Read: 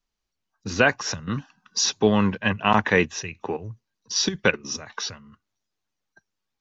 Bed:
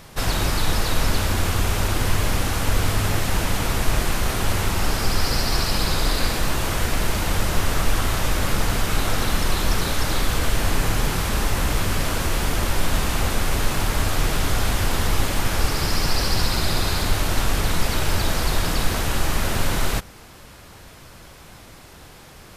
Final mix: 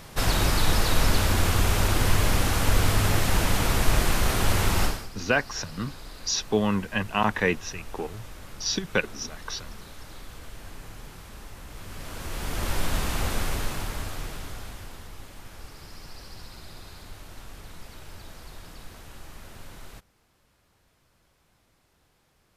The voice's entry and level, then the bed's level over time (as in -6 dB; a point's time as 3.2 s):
4.50 s, -4.5 dB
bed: 4.84 s -1 dB
5.1 s -21.5 dB
11.67 s -21.5 dB
12.71 s -5.5 dB
13.41 s -5.5 dB
15.11 s -22.5 dB